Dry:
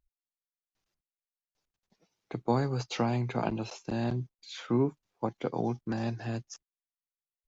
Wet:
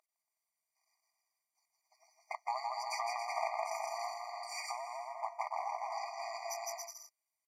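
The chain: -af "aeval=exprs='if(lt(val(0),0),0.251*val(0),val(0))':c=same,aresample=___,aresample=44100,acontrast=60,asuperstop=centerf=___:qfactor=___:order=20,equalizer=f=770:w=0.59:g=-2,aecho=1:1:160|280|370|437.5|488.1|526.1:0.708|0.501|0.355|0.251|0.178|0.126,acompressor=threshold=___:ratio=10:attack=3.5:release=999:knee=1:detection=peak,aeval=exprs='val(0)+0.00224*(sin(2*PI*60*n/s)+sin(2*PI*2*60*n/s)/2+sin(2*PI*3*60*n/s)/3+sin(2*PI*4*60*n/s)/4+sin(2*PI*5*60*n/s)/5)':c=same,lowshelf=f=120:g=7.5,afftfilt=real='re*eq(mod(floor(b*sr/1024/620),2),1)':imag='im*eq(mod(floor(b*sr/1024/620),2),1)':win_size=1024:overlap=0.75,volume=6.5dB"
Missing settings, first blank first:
32000, 3600, 2.4, -25dB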